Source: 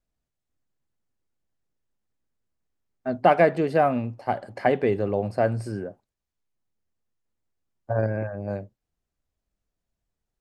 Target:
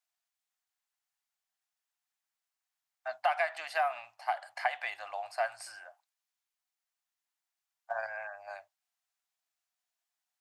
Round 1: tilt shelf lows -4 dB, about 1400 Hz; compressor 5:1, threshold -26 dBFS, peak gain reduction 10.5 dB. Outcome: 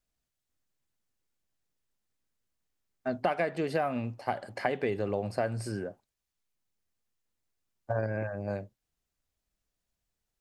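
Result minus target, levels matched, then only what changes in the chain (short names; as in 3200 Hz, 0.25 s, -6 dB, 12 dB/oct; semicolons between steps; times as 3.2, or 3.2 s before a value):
500 Hz band +5.0 dB
add first: elliptic high-pass 700 Hz, stop band 40 dB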